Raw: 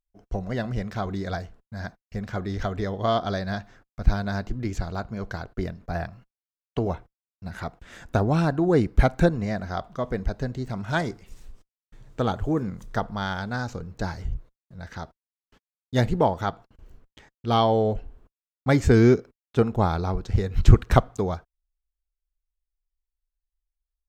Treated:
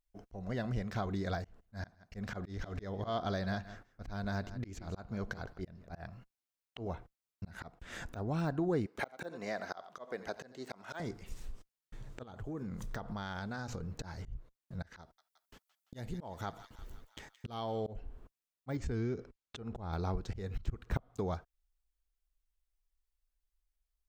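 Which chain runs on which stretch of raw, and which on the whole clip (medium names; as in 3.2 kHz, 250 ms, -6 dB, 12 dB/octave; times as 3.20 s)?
1.44–6.05 s: slow attack 180 ms + delay 163 ms -19.5 dB
8.86–11.00 s: high-pass 420 Hz + delay 88 ms -18 dB
12.23–14.03 s: hum notches 60/120 Hz + compression 12:1, threshold -36 dBFS
15.01–17.87 s: treble shelf 6.9 kHz +10 dB + compression 1.5:1, threshold -44 dBFS + feedback echo behind a high-pass 171 ms, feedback 60%, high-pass 1.7 kHz, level -15 dB
18.77–19.93 s: low-pass 7.3 kHz + bass shelf 76 Hz +10.5 dB + compression 5:1, threshold -24 dBFS
whole clip: de-esser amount 95%; slow attack 372 ms; compression 2.5:1, threshold -37 dBFS; trim +1 dB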